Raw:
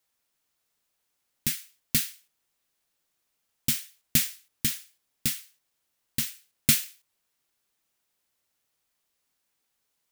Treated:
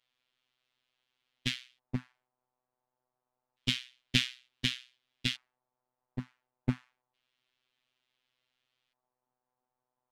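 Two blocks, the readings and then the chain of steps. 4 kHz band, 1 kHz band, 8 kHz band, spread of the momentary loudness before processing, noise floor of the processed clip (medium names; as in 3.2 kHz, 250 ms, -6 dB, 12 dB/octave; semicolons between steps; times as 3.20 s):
-0.5 dB, -1.0 dB, -18.5 dB, 13 LU, under -85 dBFS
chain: LFO low-pass square 0.28 Hz 850–3300 Hz; robot voice 126 Hz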